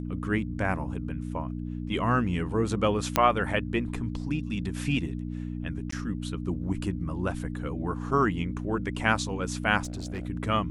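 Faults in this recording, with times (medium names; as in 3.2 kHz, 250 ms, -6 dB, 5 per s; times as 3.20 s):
hum 60 Hz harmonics 5 -34 dBFS
3.16 s: pop -5 dBFS
5.91–5.92 s: dropout 14 ms
9.83–10.27 s: clipped -30 dBFS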